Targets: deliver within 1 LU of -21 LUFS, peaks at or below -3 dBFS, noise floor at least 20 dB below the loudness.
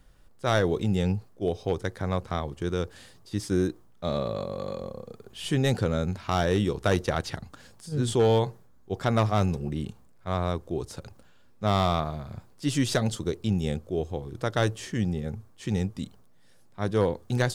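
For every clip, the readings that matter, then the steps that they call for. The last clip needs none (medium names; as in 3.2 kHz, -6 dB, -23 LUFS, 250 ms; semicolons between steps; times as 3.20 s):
clipped samples 0.3%; clipping level -15.0 dBFS; loudness -28.5 LUFS; peak level -15.0 dBFS; loudness target -21.0 LUFS
-> clip repair -15 dBFS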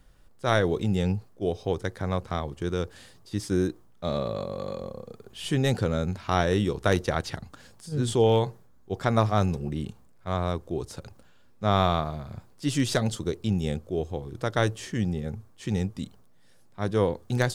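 clipped samples 0.0%; loudness -28.0 LUFS; peak level -7.0 dBFS; loudness target -21.0 LUFS
-> trim +7 dB; peak limiter -3 dBFS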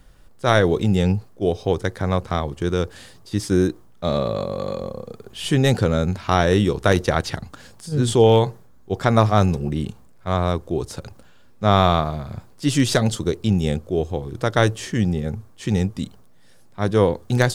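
loudness -21.0 LUFS; peak level -3.0 dBFS; noise floor -47 dBFS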